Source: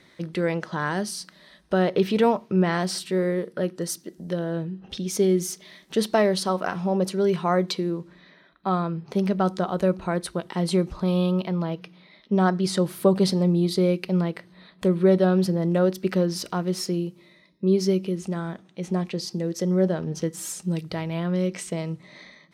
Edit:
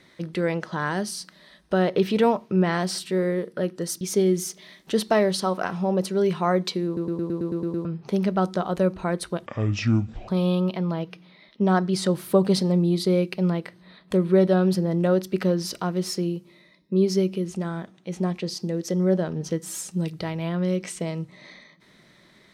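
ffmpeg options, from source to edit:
-filter_complex "[0:a]asplit=13[s0][s1][s2][s3][s4][s5][s6][s7][s8][s9][s10][s11][s12];[s0]atrim=end=4.012[s13];[s1]atrim=start=5.038:end=8.002[s14];[s2]atrim=start=7.888:end=8.002[s15];[s3]atrim=start=7.888:end=8.002[s16];[s4]atrim=start=7.888:end=8.002[s17];[s5]atrim=start=7.888:end=8.002[s18];[s6]atrim=start=7.888:end=8.002[s19];[s7]atrim=start=7.888:end=8.002[s20];[s8]atrim=start=7.888:end=8.002[s21];[s9]atrim=start=7.888:end=8.002[s22];[s10]atrim=start=8.878:end=10.494[s23];[s11]atrim=start=10.49:end=10.99,asetpts=PTS-STARTPTS,asetrate=26901,aresample=44100[s24];[s12]atrim=start=10.986[s25];[s13][s14]acrossfade=d=0.004:c1=hsin:c2=hsin[s26];[s26][s15]acrossfade=d=0.004:c1=hsin:c2=hsin[s27];[s27][s16]acrossfade=d=0.004:c1=hsin:c2=hsin[s28];[s28][s17]acrossfade=d=0.004:c1=hsin:c2=hsin[s29];[s29][s18]acrossfade=d=0.004:c1=hsin:c2=hsin[s30];[s30][s19]acrossfade=d=0.004:c1=hsin:c2=hsin[s31];[s31][s20]acrossfade=d=0.004:c1=hsin:c2=hsin[s32];[s32][s21]acrossfade=d=0.004:c1=hsin:c2=hsin[s33];[s33][s22]acrossfade=d=0.004:c1=hsin:c2=hsin[s34];[s34][s23]acrossfade=d=0.004:c1=hsin:c2=hsin[s35];[s35][s24]acrossfade=d=0.004:c1=hsin:c2=hsin[s36];[s36][s25]acrossfade=d=0.004:c1=hsin:c2=hsin"

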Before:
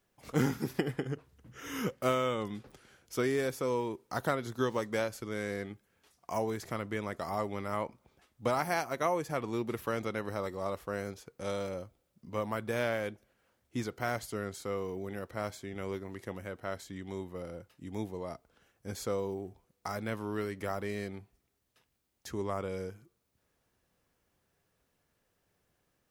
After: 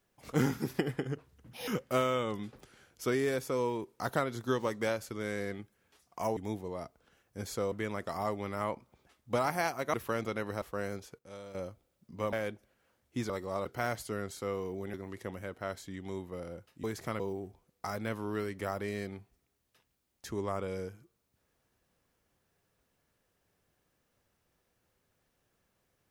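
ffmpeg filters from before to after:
-filter_complex "[0:a]asplit=15[s0][s1][s2][s3][s4][s5][s6][s7][s8][s9][s10][s11][s12][s13][s14];[s0]atrim=end=1.534[s15];[s1]atrim=start=1.53:end=1.79,asetpts=PTS-STARTPTS,asetrate=78057,aresample=44100[s16];[s2]atrim=start=1.786:end=6.482[s17];[s3]atrim=start=17.858:end=19.212[s18];[s4]atrim=start=6.838:end=9.062[s19];[s5]atrim=start=9.718:end=10.402[s20];[s6]atrim=start=10.758:end=11.332[s21];[s7]atrim=start=11.328:end=11.692,asetpts=PTS-STARTPTS,volume=0.266[s22];[s8]atrim=start=11.688:end=12.472[s23];[s9]atrim=start=12.918:end=13.892[s24];[s10]atrim=start=10.398:end=10.762[s25];[s11]atrim=start=13.888:end=15.172[s26];[s12]atrim=start=15.958:end=17.862[s27];[s13]atrim=start=6.478:end=6.842[s28];[s14]atrim=start=19.208[s29];[s15][s16]acrossfade=d=0.004:c1=hsin:c2=hsin[s30];[s30][s17]acrossfade=d=0.004:c1=hsin:c2=hsin[s31];[s31][s18]acrossfade=d=0.004:c1=hsin:c2=hsin[s32];[s32][s19]acrossfade=d=0.004:c1=hsin:c2=hsin[s33];[s33][s20]acrossfade=d=0.004:c1=hsin:c2=hsin[s34];[s34][s21]acrossfade=d=0.004:c1=hsin:c2=hsin[s35];[s35][s22]acrossfade=d=0.004:c1=hsin:c2=hsin[s36];[s36][s23]acrossfade=d=0.004:c1=hsin:c2=hsin[s37];[s37][s24]acrossfade=d=0.004:c1=hsin:c2=hsin[s38];[s38][s25]acrossfade=d=0.004:c1=hsin:c2=hsin[s39];[s39][s26]acrossfade=d=0.004:c1=hsin:c2=hsin[s40];[s40][s27]acrossfade=d=0.004:c1=hsin:c2=hsin[s41];[s41][s28]acrossfade=d=0.004:c1=hsin:c2=hsin[s42];[s42][s29]acrossfade=d=0.004:c1=hsin:c2=hsin"

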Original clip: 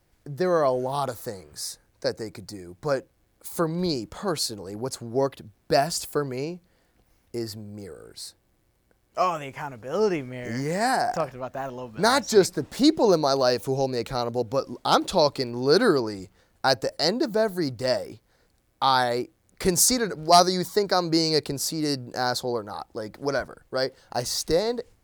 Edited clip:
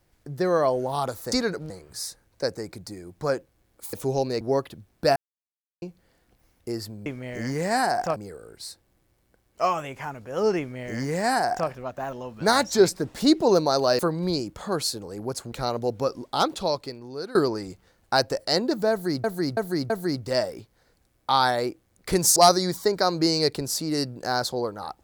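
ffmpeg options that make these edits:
-filter_complex "[0:a]asplit=16[s0][s1][s2][s3][s4][s5][s6][s7][s8][s9][s10][s11][s12][s13][s14][s15];[s0]atrim=end=1.322[s16];[s1]atrim=start=19.888:end=20.272[s17];[s2]atrim=start=1.318:end=3.552[s18];[s3]atrim=start=13.558:end=14.042[s19];[s4]atrim=start=5.078:end=5.83,asetpts=PTS-STARTPTS,afade=t=out:st=0.748:d=0.004:c=hsin[s20];[s5]atrim=start=5.83:end=6.49,asetpts=PTS-STARTPTS,volume=0[s21];[s6]atrim=start=6.49:end=7.732,asetpts=PTS-STARTPTS,afade=t=in:d=0.004:c=hsin[s22];[s7]atrim=start=10.158:end=11.262[s23];[s8]atrim=start=7.728:end=13.562[s24];[s9]atrim=start=3.548:end=5.082[s25];[s10]atrim=start=14.038:end=15.87,asetpts=PTS-STARTPTS,afade=t=out:st=0.512:d=1.32:silence=0.0841395[s26];[s11]atrim=start=15.87:end=17.762,asetpts=PTS-STARTPTS,afade=t=in:d=0.004:c=hsin:silence=0.0841395[s27];[s12]atrim=start=17.428:end=17.762[s28];[s13]atrim=start=17.428:end=17.762[s29];[s14]atrim=start=17.428:end=19.892[s30];[s15]atrim=start=20.268[s31];[s16][s17]acrossfade=d=0.004:c1=hsin:c2=hsin[s32];[s32][s18]acrossfade=d=0.004:c1=hsin:c2=hsin[s33];[s33][s19]acrossfade=d=0.004:c1=hsin:c2=hsin[s34];[s20][s21][s22]concat=n=3:v=0:a=1[s35];[s34][s35]acrossfade=d=0.004:c1=hsin:c2=hsin[s36];[s36][s23]acrossfade=d=0.004:c1=hsin:c2=hsin[s37];[s37][s24]acrossfade=d=0.004:c1=hsin:c2=hsin[s38];[s38][s25]acrossfade=d=0.004:c1=hsin:c2=hsin[s39];[s26][s27]concat=n=2:v=0:a=1[s40];[s39][s40]acrossfade=d=0.004:c1=hsin:c2=hsin[s41];[s41][s28]acrossfade=d=0.004:c1=hsin:c2=hsin[s42];[s42][s29]acrossfade=d=0.004:c1=hsin:c2=hsin[s43];[s43][s30]acrossfade=d=0.004:c1=hsin:c2=hsin[s44];[s44][s31]acrossfade=d=0.004:c1=hsin:c2=hsin"

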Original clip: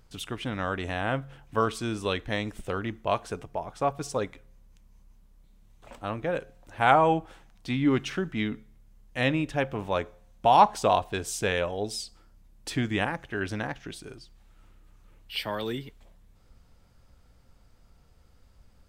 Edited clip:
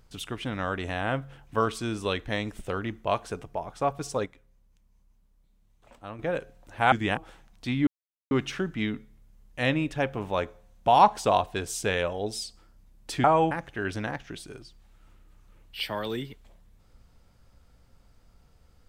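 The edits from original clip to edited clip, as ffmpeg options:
-filter_complex "[0:a]asplit=8[s0][s1][s2][s3][s4][s5][s6][s7];[s0]atrim=end=4.262[s8];[s1]atrim=start=4.258:end=6.192,asetpts=PTS-STARTPTS,volume=0.422[s9];[s2]atrim=start=6.188:end=6.922[s10];[s3]atrim=start=12.818:end=13.072[s11];[s4]atrim=start=7.188:end=7.89,asetpts=PTS-STARTPTS,afade=t=out:st=0.698:d=0.004:c=hsin,apad=pad_dur=0.44[s12];[s5]atrim=start=7.89:end=12.822,asetpts=PTS-STARTPTS,afade=t=in:d=0.004:c=hsin[s13];[s6]atrim=start=6.918:end=7.192[s14];[s7]atrim=start=13.068[s15];[s8][s9]acrossfade=d=0.004:c1=hsin:c2=hsin[s16];[s16][s10]acrossfade=d=0.004:c1=hsin:c2=hsin[s17];[s17][s11]acrossfade=d=0.004:c1=hsin:c2=hsin[s18];[s12][s13]concat=n=2:v=0:a=1[s19];[s18][s19]acrossfade=d=0.004:c1=hsin:c2=hsin[s20];[s20][s14]acrossfade=d=0.004:c1=hsin:c2=hsin[s21];[s21][s15]acrossfade=d=0.004:c1=hsin:c2=hsin"

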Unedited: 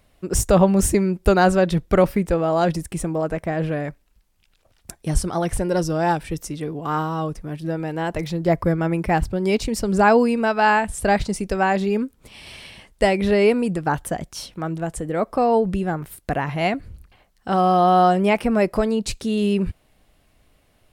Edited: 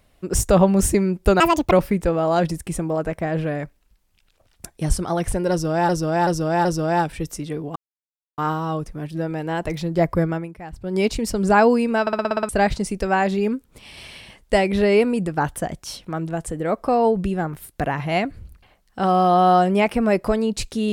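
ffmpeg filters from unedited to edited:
-filter_complex "[0:a]asplit=17[s0][s1][s2][s3][s4][s5][s6][s7][s8][s9][s10][s11][s12][s13][s14][s15][s16];[s0]atrim=end=1.404[s17];[s1]atrim=start=1.4:end=1.97,asetpts=PTS-STARTPTS,asetrate=78939,aresample=44100,atrim=end_sample=14043,asetpts=PTS-STARTPTS[s18];[s2]atrim=start=1.966:end=6.142[s19];[s3]atrim=start=5.758:end=6.142[s20];[s4]atrim=start=5.758:end=6.142[s21];[s5]atrim=start=5.758:end=6.87,asetpts=PTS-STARTPTS,afade=t=out:st=1.108:d=0.004:c=hsin,apad=pad_dur=0.62[s22];[s6]atrim=start=6.87:end=9.08,asetpts=PTS-STARTPTS,afade=t=in:d=0.004:c=hsin,afade=t=out:st=1.91:d=0.3:c=qua:silence=0.141254[s23];[s7]atrim=start=9.08:end=9.15,asetpts=PTS-STARTPTS,volume=0.141[s24];[s8]atrim=start=9.15:end=10.562,asetpts=PTS-STARTPTS,afade=t=in:d=0.3:c=qua:silence=0.141254[s25];[s9]atrim=start=10.498:end=10.562[s26];[s10]atrim=start=10.498:end=10.562[s27];[s11]atrim=start=10.498:end=10.562[s28];[s12]atrim=start=10.498:end=10.562[s29];[s13]atrim=start=10.498:end=10.562[s30];[s14]atrim=start=10.498:end=10.562[s31];[s15]atrim=start=10.498:end=10.562[s32];[s16]atrim=start=10.978[s33];[s17][s18]acrossfade=d=0.004:c1=hsin:c2=hsin[s34];[s34][s19]acrossfade=d=0.004:c1=hsin:c2=hsin[s35];[s35][s20]acrossfade=d=0.004:c1=hsin:c2=hsin[s36];[s36][s21]acrossfade=d=0.004:c1=hsin:c2=hsin[s37];[s22][s23][s24][s25]concat=n=4:v=0:a=1[s38];[s37][s38]acrossfade=d=0.004:c1=hsin:c2=hsin[s39];[s39][s26]acrossfade=d=0.004:c1=hsin:c2=hsin[s40];[s40][s27]acrossfade=d=0.004:c1=hsin:c2=hsin[s41];[s41][s28]acrossfade=d=0.004:c1=hsin:c2=hsin[s42];[s42][s29]acrossfade=d=0.004:c1=hsin:c2=hsin[s43];[s43][s30]acrossfade=d=0.004:c1=hsin:c2=hsin[s44];[s44][s31]acrossfade=d=0.004:c1=hsin:c2=hsin[s45];[s45][s32]acrossfade=d=0.004:c1=hsin:c2=hsin[s46];[s46][s33]acrossfade=d=0.004:c1=hsin:c2=hsin"

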